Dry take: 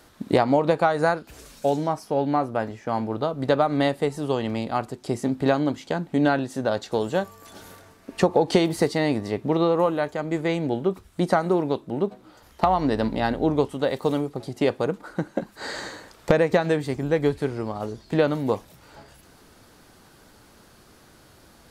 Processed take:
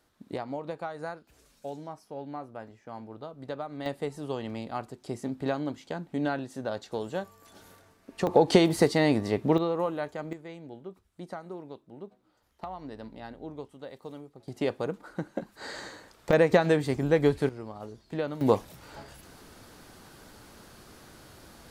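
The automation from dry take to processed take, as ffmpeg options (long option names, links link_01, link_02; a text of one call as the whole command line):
ffmpeg -i in.wav -af "asetnsamples=nb_out_samples=441:pad=0,asendcmd='3.86 volume volume -9dB;8.27 volume volume -0.5dB;9.58 volume volume -8dB;10.33 volume volume -19dB;14.48 volume volume -7dB;16.33 volume volume -1dB;17.49 volume volume -11dB;18.41 volume volume 1.5dB',volume=-16dB" out.wav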